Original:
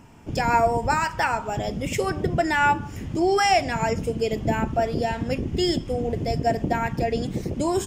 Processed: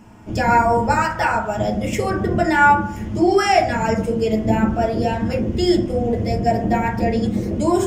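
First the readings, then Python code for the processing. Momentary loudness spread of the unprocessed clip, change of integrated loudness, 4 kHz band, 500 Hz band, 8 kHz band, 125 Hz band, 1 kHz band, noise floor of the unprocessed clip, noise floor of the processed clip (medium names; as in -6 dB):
7 LU, +5.0 dB, +1.0 dB, +4.5 dB, +1.0 dB, +5.0 dB, +5.0 dB, -37 dBFS, -29 dBFS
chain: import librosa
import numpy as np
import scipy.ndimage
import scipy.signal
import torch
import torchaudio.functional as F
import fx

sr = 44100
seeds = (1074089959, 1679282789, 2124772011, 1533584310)

y = fx.rev_fdn(x, sr, rt60_s=0.54, lf_ratio=0.95, hf_ratio=0.3, size_ms=28.0, drr_db=-2.0)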